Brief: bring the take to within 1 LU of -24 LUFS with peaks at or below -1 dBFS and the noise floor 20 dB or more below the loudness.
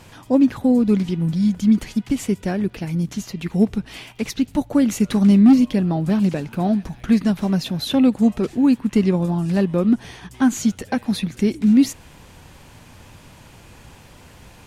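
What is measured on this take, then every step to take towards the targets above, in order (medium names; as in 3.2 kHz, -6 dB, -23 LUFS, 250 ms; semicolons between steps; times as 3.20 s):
tick rate 23 per s; loudness -19.0 LUFS; peak level -5.5 dBFS; loudness target -24.0 LUFS
-> de-click; trim -5 dB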